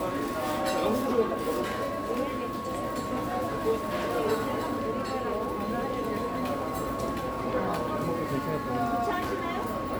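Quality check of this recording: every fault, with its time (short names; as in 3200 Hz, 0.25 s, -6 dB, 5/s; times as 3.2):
tone 1100 Hz -35 dBFS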